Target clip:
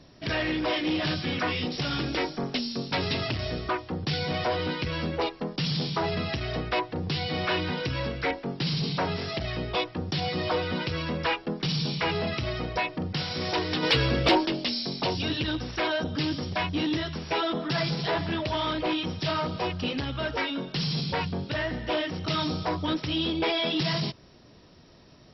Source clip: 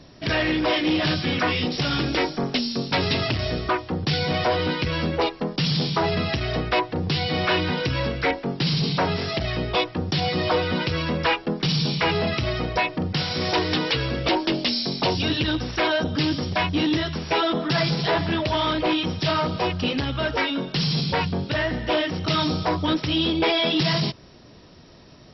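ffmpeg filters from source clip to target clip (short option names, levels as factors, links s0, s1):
-filter_complex "[0:a]asplit=3[s0][s1][s2];[s0]afade=t=out:st=13.82:d=0.02[s3];[s1]acontrast=74,afade=t=in:st=13.82:d=0.02,afade=t=out:st=14.45:d=0.02[s4];[s2]afade=t=in:st=14.45:d=0.02[s5];[s3][s4][s5]amix=inputs=3:normalize=0,volume=0.531"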